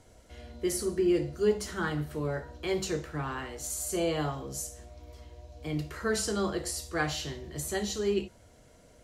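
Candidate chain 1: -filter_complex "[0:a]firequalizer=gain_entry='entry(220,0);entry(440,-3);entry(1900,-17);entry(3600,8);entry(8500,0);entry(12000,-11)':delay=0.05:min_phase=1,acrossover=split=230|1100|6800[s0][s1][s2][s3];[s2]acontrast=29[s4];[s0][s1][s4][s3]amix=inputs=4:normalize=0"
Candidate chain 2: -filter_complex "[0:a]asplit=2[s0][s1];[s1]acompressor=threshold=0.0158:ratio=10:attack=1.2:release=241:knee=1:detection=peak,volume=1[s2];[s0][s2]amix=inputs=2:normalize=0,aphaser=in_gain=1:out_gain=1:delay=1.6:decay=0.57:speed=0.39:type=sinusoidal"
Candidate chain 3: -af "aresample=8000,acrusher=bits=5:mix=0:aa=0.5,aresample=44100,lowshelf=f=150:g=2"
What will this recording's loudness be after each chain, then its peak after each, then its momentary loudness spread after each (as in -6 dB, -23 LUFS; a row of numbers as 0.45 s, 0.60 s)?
-30.5 LUFS, -28.5 LUFS, -32.0 LUFS; -13.0 dBFS, -11.0 dBFS, -15.0 dBFS; 17 LU, 12 LU, 12 LU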